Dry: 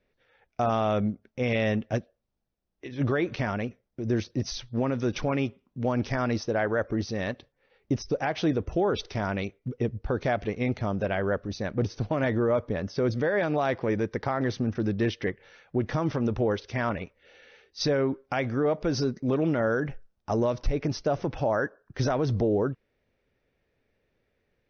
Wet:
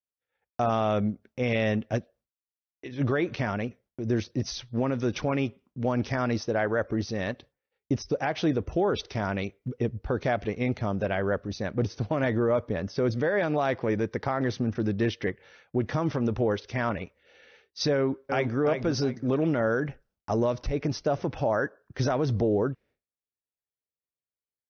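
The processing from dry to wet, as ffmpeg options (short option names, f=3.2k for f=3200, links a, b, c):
-filter_complex "[0:a]asplit=2[a][b];[b]afade=t=in:st=17.94:d=0.01,afade=t=out:st=18.57:d=0.01,aecho=0:1:350|700|1050|1400:0.501187|0.150356|0.0451069|0.0135321[c];[a][c]amix=inputs=2:normalize=0,agate=range=-33dB:threshold=-52dB:ratio=3:detection=peak,highpass=41"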